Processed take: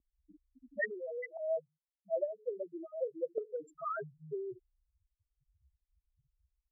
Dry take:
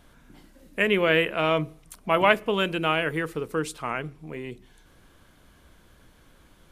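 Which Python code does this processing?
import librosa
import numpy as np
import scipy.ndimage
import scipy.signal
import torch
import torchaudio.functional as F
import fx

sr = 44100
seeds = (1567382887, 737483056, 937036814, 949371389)

p1 = fx.rider(x, sr, range_db=3, speed_s=0.5)
p2 = x + (p1 * librosa.db_to_amplitude(3.0))
p3 = fx.spec_topn(p2, sr, count=1)
p4 = fx.vowel_filter(p3, sr, vowel='e', at=(1.37, 3.38))
p5 = fx.auto_wah(p4, sr, base_hz=290.0, top_hz=2700.0, q=2.2, full_db=-23.0, direction='up')
y = p5 * librosa.db_to_amplitude(3.5)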